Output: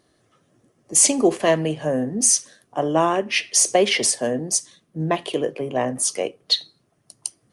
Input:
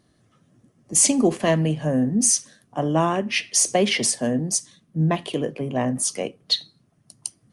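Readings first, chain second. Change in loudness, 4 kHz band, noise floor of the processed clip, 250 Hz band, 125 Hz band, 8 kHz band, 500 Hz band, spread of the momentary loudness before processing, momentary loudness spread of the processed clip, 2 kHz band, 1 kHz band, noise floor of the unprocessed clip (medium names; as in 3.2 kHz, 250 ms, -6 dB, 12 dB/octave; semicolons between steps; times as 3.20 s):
+1.5 dB, +2.0 dB, -66 dBFS, -2.5 dB, -6.0 dB, +2.0 dB, +3.5 dB, 10 LU, 13 LU, +2.0 dB, +2.5 dB, -64 dBFS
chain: resonant low shelf 290 Hz -6.5 dB, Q 1.5; trim +2 dB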